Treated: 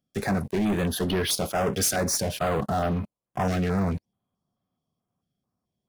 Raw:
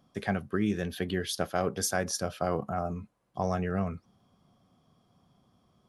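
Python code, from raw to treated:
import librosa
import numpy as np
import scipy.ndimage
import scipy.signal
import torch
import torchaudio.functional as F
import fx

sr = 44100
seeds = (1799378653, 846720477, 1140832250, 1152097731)

y = fx.high_shelf(x, sr, hz=6800.0, db=5.5)
y = fx.leveller(y, sr, passes=5)
y = fx.filter_held_notch(y, sr, hz=4.6, low_hz=970.0, high_hz=7300.0)
y = y * 10.0 ** (-6.0 / 20.0)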